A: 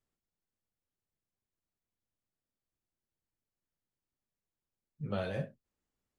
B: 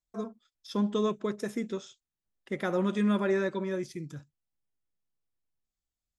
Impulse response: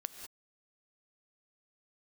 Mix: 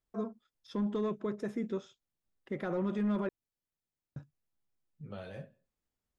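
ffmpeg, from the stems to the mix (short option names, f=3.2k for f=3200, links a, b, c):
-filter_complex "[0:a]acompressor=threshold=-47dB:ratio=1.5,volume=-4dB,asplit=2[a][b];[b]volume=-20dB[c];[1:a]asoftclip=type=hard:threshold=-22dB,lowpass=f=1.4k:p=1,volume=0.5dB,asplit=3[d][e][f];[d]atrim=end=3.29,asetpts=PTS-STARTPTS,afade=t=out:st=3.286:d=0.004:c=hsin[g];[e]atrim=start=3.29:end=4.16,asetpts=PTS-STARTPTS,volume=0[h];[f]atrim=start=4.16,asetpts=PTS-STARTPTS,afade=t=in:d=0.004:c=hsin[i];[g][h][i]concat=n=3:v=0:a=1[j];[2:a]atrim=start_sample=2205[k];[c][k]afir=irnorm=-1:irlink=0[l];[a][j][l]amix=inputs=3:normalize=0,alimiter=level_in=2.5dB:limit=-24dB:level=0:latency=1:release=18,volume=-2.5dB"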